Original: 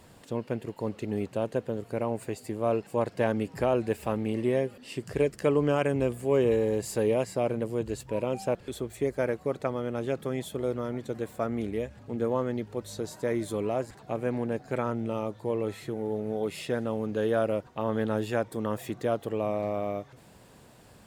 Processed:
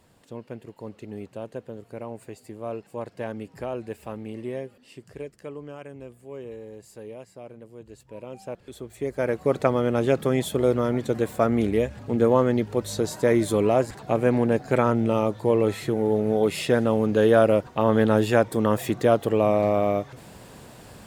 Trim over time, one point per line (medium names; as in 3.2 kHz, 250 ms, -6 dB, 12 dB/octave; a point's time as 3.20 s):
4.58 s -6 dB
5.67 s -14.5 dB
7.70 s -14.5 dB
8.93 s -3 dB
9.56 s +9 dB